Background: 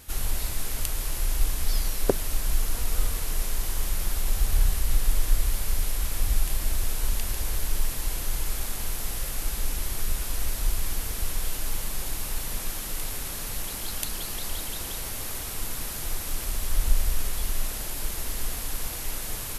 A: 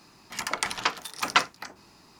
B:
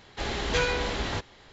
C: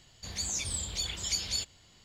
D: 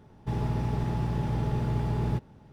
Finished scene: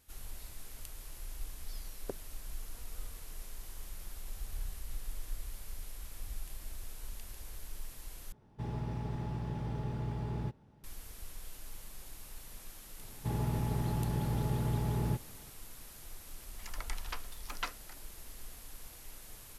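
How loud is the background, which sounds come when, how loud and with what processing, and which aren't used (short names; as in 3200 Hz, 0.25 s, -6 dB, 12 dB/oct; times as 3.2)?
background -18 dB
8.32 replace with D -9 dB
12.98 add D -4.5 dB
16.27 add A -17 dB
not used: B, C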